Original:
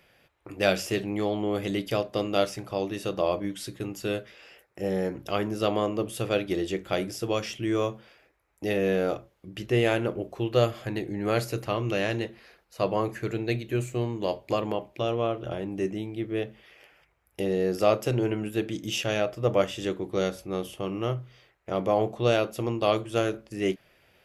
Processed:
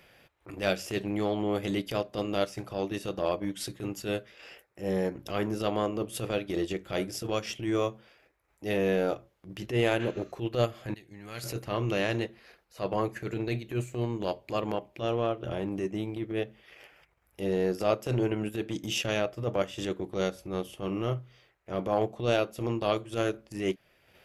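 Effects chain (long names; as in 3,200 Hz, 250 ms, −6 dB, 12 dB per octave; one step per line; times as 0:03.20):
0:10.02–0:10.29: healed spectral selection 1,100–7,600 Hz both
0:10.94–0:11.44: guitar amp tone stack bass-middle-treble 5-5-5
in parallel at +1 dB: downward compressor, threshold −32 dBFS, peak gain reduction 15.5 dB
on the sum: transient designer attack −11 dB, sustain −7 dB
level −3 dB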